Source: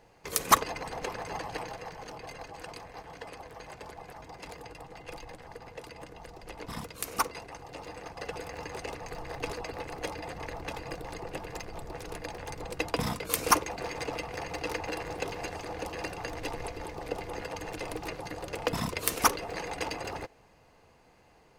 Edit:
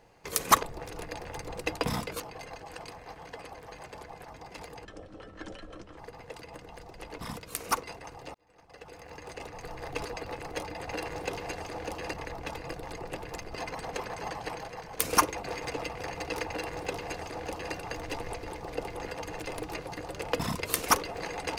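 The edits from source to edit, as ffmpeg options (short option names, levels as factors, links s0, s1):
-filter_complex "[0:a]asplit=10[s0][s1][s2][s3][s4][s5][s6][s7][s8][s9];[s0]atrim=end=0.632[s10];[s1]atrim=start=11.758:end=13.332[s11];[s2]atrim=start=2.078:end=4.734[s12];[s3]atrim=start=4.73:end=5.45,asetpts=PTS-STARTPTS,asetrate=28224,aresample=44100,atrim=end_sample=49612,asetpts=PTS-STARTPTS[s13];[s4]atrim=start=5.446:end=7.82,asetpts=PTS-STARTPTS,afade=t=out:st=2.37:d=0.004:c=hsin[s14];[s5]atrim=start=7.82:end=10.352,asetpts=PTS-STARTPTS,afade=t=in:d=1.57[s15];[s6]atrim=start=14.818:end=16.082[s16];[s7]atrim=start=10.348:end=11.762[s17];[s8]atrim=start=0.628:end=2.082[s18];[s9]atrim=start=13.328[s19];[s10][s11]acrossfade=d=0.004:c1=hsin:c2=hsin[s20];[s20][s12]acrossfade=d=0.004:c1=hsin:c2=hsin[s21];[s21][s13]acrossfade=d=0.004:c1=hsin:c2=hsin[s22];[s14][s15]concat=n=2:v=0:a=1[s23];[s22][s23]acrossfade=d=0.004:c1=hsin:c2=hsin[s24];[s24][s16]acrossfade=d=0.004:c1=hsin:c2=hsin[s25];[s25][s17]acrossfade=d=0.004:c1=hsin:c2=hsin[s26];[s26][s18]acrossfade=d=0.004:c1=hsin:c2=hsin[s27];[s27][s19]acrossfade=d=0.004:c1=hsin:c2=hsin"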